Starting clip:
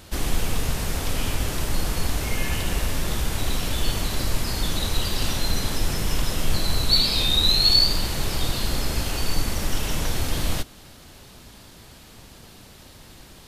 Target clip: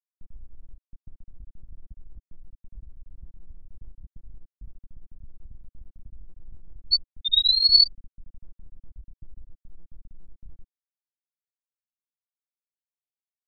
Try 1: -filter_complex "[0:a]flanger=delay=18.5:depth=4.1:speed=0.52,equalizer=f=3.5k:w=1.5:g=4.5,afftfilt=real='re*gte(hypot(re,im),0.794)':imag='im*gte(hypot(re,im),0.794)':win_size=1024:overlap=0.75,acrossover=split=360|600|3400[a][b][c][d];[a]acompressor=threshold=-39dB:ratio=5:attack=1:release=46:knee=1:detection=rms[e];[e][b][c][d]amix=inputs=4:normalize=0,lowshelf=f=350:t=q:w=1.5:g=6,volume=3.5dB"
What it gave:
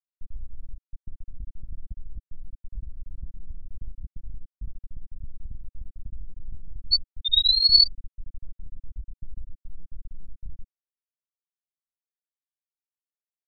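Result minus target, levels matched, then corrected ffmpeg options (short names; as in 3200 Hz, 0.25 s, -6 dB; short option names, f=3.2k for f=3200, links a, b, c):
compressor: peak gain reduction -7.5 dB
-filter_complex "[0:a]flanger=delay=18.5:depth=4.1:speed=0.52,equalizer=f=3.5k:w=1.5:g=4.5,afftfilt=real='re*gte(hypot(re,im),0.794)':imag='im*gte(hypot(re,im),0.794)':win_size=1024:overlap=0.75,acrossover=split=360|600|3400[a][b][c][d];[a]acompressor=threshold=-48.5dB:ratio=5:attack=1:release=46:knee=1:detection=rms[e];[e][b][c][d]amix=inputs=4:normalize=0,lowshelf=f=350:t=q:w=1.5:g=6,volume=3.5dB"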